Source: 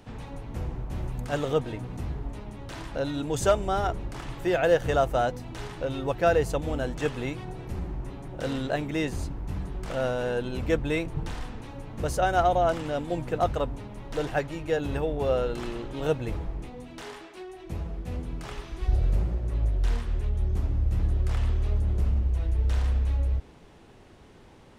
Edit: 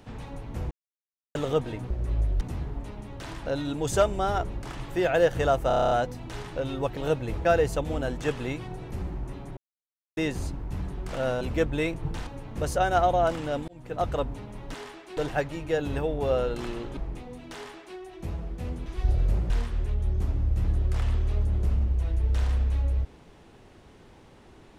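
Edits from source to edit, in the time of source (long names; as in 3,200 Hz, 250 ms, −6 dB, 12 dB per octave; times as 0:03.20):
0:00.71–0:01.35: silence
0:05.16: stutter 0.03 s, 9 plays
0:08.34–0:08.94: silence
0:10.18–0:10.53: remove
0:11.39–0:11.69: remove
0:13.10–0:13.57: fade in
0:15.96–0:16.44: move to 0:06.22
0:17.01–0:17.44: duplicate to 0:14.16
0:18.33–0:18.70: remove
0:19.34–0:19.85: move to 0:01.90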